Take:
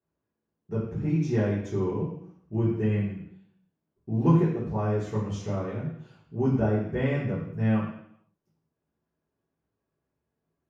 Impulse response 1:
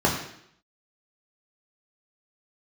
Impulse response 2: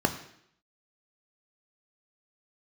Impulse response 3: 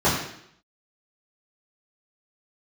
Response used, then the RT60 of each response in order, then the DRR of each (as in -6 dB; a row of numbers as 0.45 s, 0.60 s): 3; 0.70 s, 0.70 s, 0.70 s; -3.0 dB, 6.0 dB, -11.0 dB